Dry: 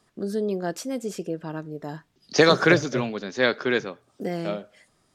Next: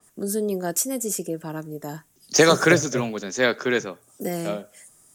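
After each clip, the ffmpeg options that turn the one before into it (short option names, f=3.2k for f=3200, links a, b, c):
-filter_complex "[0:a]acrossover=split=160|750|3100[a][b][c][d];[d]aexciter=amount=4.4:drive=9.3:freq=6.2k[e];[a][b][c][e]amix=inputs=4:normalize=0,adynamicequalizer=threshold=0.0178:dfrequency=4200:dqfactor=0.7:tfrequency=4200:tqfactor=0.7:attack=5:release=100:ratio=0.375:range=2:mode=cutabove:tftype=highshelf,volume=1dB"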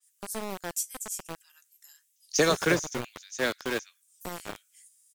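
-filter_complex "[0:a]acrossover=split=2200[a][b];[a]aeval=exprs='val(0)*gte(abs(val(0)),0.0944)':c=same[c];[b]asplit=2[d][e];[e]adelay=15,volume=-13dB[f];[d][f]amix=inputs=2:normalize=0[g];[c][g]amix=inputs=2:normalize=0,volume=-7.5dB"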